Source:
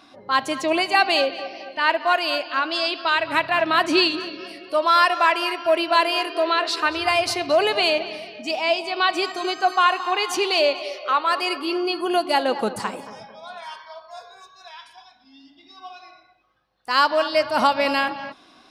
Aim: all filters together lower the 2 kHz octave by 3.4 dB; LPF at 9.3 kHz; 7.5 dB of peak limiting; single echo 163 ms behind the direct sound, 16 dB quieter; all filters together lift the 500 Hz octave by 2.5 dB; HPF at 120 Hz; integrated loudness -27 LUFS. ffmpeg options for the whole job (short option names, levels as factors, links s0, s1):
-af "highpass=120,lowpass=9300,equalizer=f=500:t=o:g=4,equalizer=f=2000:t=o:g=-5,alimiter=limit=0.266:level=0:latency=1,aecho=1:1:163:0.158,volume=0.596"